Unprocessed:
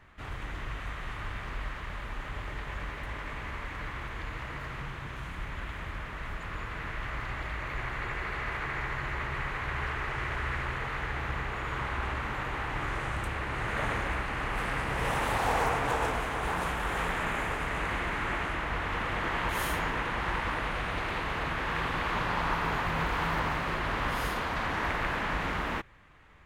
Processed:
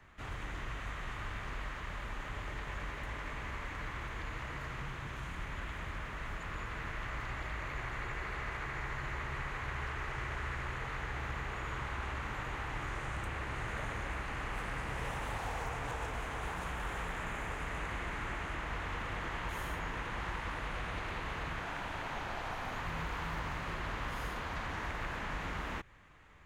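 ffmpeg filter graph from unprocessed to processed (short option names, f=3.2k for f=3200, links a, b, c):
-filter_complex "[0:a]asettb=1/sr,asplit=3[a][b][c];[a]atrim=end=21.604[d];[b]atrim=start=21.6:end=22.76,asetpts=PTS-STARTPTS,afade=t=in:d=0.004:c=qsin,afade=t=out:st=1.156:d=0.004:c=qsin,highpass=f=180:w=0.5412,highpass=f=180:w=1.3066,afreqshift=-190[e];[c]atrim=start=22.756[f];[d][e]acrossfade=d=0.004:c1=hsin:c2=qsin[g];[g][f]acrossfade=d=0.004:c1=qsin:c2=hsin,equalizer=f=6.7k:w=2.8:g=5,acrossover=split=130|1600|3400[h][i][j][k];[h]acompressor=threshold=-36dB:ratio=4[l];[i]acompressor=threshold=-39dB:ratio=4[m];[j]acompressor=threshold=-44dB:ratio=4[n];[k]acompressor=threshold=-54dB:ratio=4[o];[l][m][n][o]amix=inputs=4:normalize=0,volume=-2.5dB"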